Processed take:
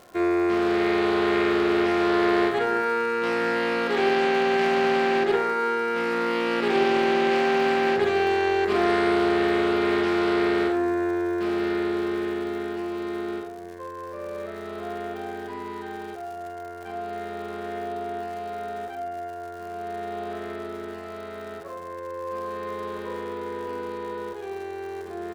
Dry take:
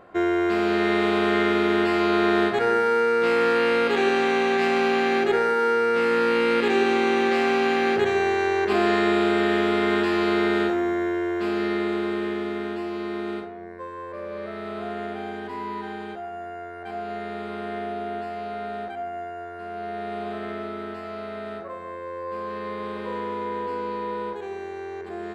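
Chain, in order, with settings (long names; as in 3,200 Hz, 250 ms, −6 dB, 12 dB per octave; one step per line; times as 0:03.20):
surface crackle 170 per second −35 dBFS
double-tracking delay 46 ms −8 dB
highs frequency-modulated by the lows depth 0.19 ms
level −2.5 dB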